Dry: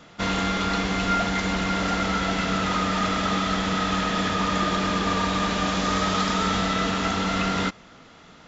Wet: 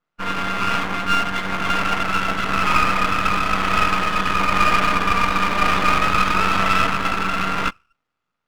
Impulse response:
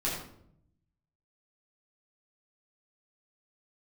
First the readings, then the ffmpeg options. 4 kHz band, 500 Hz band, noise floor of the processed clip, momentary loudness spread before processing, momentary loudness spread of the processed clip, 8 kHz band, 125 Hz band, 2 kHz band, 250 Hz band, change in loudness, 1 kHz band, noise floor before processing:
+1.5 dB, 0.0 dB, -79 dBFS, 2 LU, 5 LU, n/a, -0.5 dB, +7.0 dB, -2.0 dB, +4.5 dB, +6.5 dB, -49 dBFS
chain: -filter_complex "[0:a]asplit=2[a][b];[b]acrusher=samples=23:mix=1:aa=0.000001:lfo=1:lforange=36.8:lforate=1,volume=-8dB[c];[a][c]amix=inputs=2:normalize=0,highpass=57,equalizer=f=1.2k:t=o:w=1.2:g=11,dynaudnorm=f=320:g=11:m=11.5dB,afftdn=nr=32:nf=-23,aeval=exprs='max(val(0),0)':c=same,adynamicequalizer=threshold=0.0398:dfrequency=1600:dqfactor=0.7:tfrequency=1600:tqfactor=0.7:attack=5:release=100:ratio=0.375:range=2:mode=boostabove:tftype=highshelf,volume=-1.5dB"

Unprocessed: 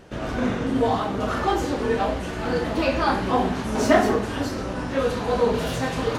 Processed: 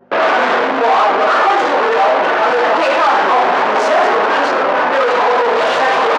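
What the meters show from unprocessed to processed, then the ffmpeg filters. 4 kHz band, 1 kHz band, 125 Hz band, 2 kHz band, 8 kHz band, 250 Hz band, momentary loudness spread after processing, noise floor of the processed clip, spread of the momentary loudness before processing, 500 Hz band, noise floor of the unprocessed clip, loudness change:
+11.0 dB, +15.0 dB, under -10 dB, +15.0 dB, n/a, -1.0 dB, 2 LU, -15 dBFS, 8 LU, +10.0 dB, -30 dBFS, +11.0 dB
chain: -filter_complex "[0:a]anlmdn=25.1,acontrast=79,aeval=exprs='val(0)+0.00501*(sin(2*PI*50*n/s)+sin(2*PI*2*50*n/s)/2+sin(2*PI*3*50*n/s)/3+sin(2*PI*4*50*n/s)/4+sin(2*PI*5*50*n/s)/5)':c=same,asplit=2[a][b];[b]highpass=f=720:p=1,volume=36dB,asoftclip=type=tanh:threshold=-1.5dB[c];[a][c]amix=inputs=2:normalize=0,lowpass=f=1.3k:p=1,volume=-6dB,asoftclip=type=tanh:threshold=-7dB,highpass=630,lowpass=6.7k,asplit=2[d][e];[e]aecho=0:1:104:0.224[f];[d][f]amix=inputs=2:normalize=0,adynamicequalizer=threshold=0.0447:dfrequency=1600:dqfactor=0.7:tfrequency=1600:tqfactor=0.7:attack=5:release=100:ratio=0.375:range=2.5:mode=cutabove:tftype=highshelf,volume=3dB"

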